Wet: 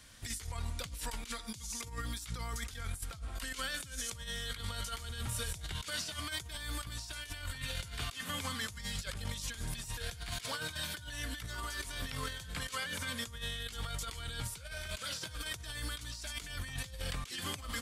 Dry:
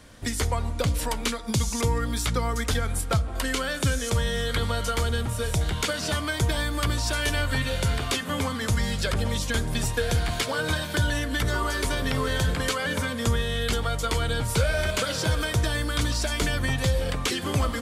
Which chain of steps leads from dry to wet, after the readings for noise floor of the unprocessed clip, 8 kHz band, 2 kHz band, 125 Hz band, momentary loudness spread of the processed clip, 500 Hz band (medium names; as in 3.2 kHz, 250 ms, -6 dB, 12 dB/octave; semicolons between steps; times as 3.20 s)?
-32 dBFS, -9.5 dB, -12.5 dB, -17.0 dB, 4 LU, -20.5 dB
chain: amplifier tone stack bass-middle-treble 5-5-5; compressor with a negative ratio -41 dBFS, ratio -0.5; trim +1.5 dB